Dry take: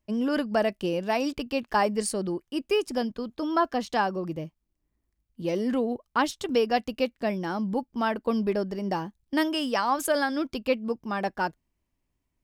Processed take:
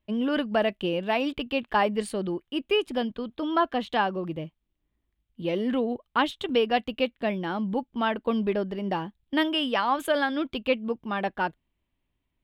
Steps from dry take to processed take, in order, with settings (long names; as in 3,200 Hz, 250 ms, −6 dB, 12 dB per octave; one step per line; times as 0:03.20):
high shelf with overshoot 4,300 Hz −8 dB, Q 3